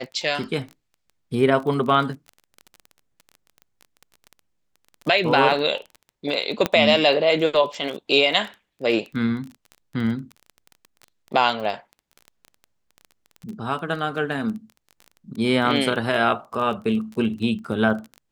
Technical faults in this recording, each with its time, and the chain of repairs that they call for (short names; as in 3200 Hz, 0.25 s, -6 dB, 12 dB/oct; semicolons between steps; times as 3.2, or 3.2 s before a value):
crackle 22/s -30 dBFS
6.66 pop -6 dBFS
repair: de-click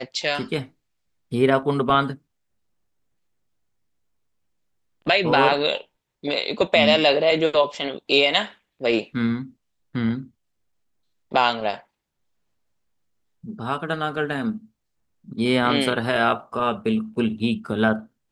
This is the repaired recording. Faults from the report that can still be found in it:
none